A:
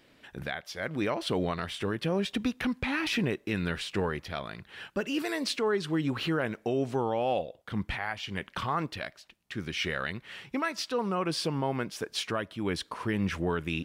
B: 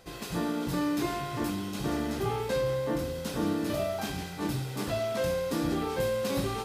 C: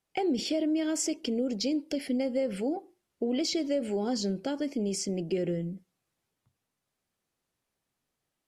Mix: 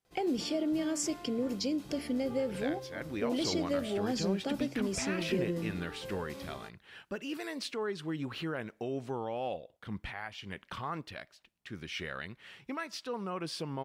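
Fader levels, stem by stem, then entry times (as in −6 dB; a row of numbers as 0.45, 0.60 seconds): −7.5, −15.5, −3.5 decibels; 2.15, 0.05, 0.00 seconds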